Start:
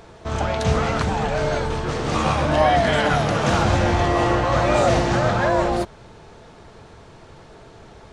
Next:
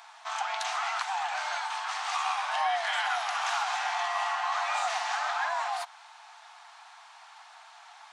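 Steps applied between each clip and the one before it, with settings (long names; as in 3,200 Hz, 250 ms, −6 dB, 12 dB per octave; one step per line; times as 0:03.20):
Chebyshev high-pass filter 740 Hz, order 6
downward compressor 2 to 1, threshold −31 dBFS, peak gain reduction 8.5 dB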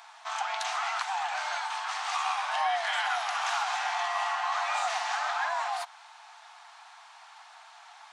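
no processing that can be heard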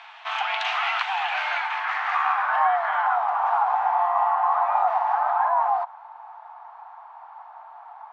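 low-pass filter sweep 2,800 Hz → 930 Hz, 0:01.30–0:03.33
level +4 dB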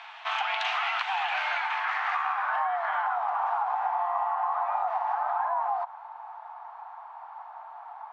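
downward compressor, threshold −25 dBFS, peak gain reduction 9 dB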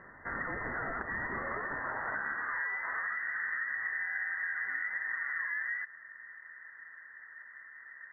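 voice inversion scrambler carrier 2,700 Hz
level −7.5 dB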